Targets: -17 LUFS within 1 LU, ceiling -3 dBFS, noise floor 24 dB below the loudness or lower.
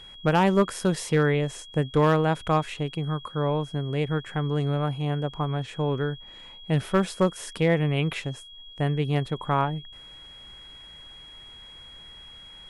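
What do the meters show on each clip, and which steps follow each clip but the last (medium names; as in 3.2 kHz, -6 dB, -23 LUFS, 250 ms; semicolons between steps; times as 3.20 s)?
clipped samples 0.3%; clipping level -13.0 dBFS; steady tone 3.3 kHz; tone level -44 dBFS; loudness -26.0 LUFS; peak level -13.0 dBFS; loudness target -17.0 LUFS
-> clip repair -13 dBFS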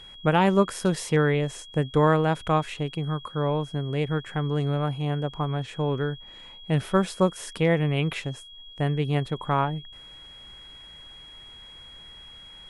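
clipped samples 0.0%; steady tone 3.3 kHz; tone level -44 dBFS
-> band-stop 3.3 kHz, Q 30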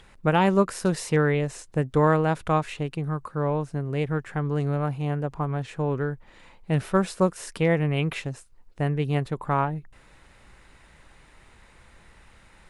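steady tone not found; loudness -25.5 LUFS; peak level -8.0 dBFS; loudness target -17.0 LUFS
-> trim +8.5 dB; peak limiter -3 dBFS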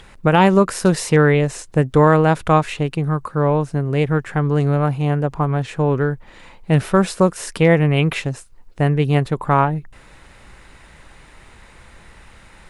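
loudness -17.5 LUFS; peak level -3.0 dBFS; noise floor -46 dBFS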